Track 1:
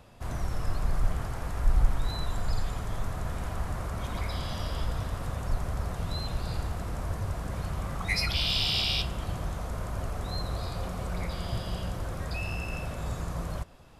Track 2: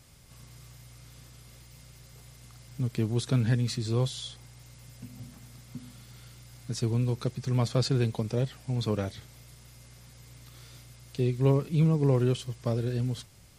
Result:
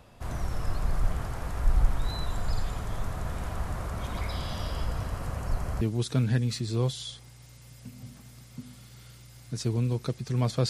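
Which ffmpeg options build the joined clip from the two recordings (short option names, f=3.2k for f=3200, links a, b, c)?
-filter_complex "[0:a]asettb=1/sr,asplit=3[a][b][c];[a]atrim=end=4.724[d];[b]atrim=start=4.72:end=5.81,asetpts=PTS-STARTPTS,afade=t=in:d=0.004:c=qsin,afade=t=out:st=1.086:d=0.004:c=qsin,bandreject=f=3.6k:w=8.2[e];[c]atrim=start=5.806[f];[d][e]acrossfade=d=0.004:c1=hsin:c2=qsin[g];[g][f]acrossfade=d=0.004:c1=qsin:c2=hsin,apad=whole_dur=10.69,atrim=end=10.69,atrim=end=5.812[h];[1:a]atrim=start=2.978:end=7.86[i];[h][i]acrossfade=d=0.004:c1=hsin:c2=hsin"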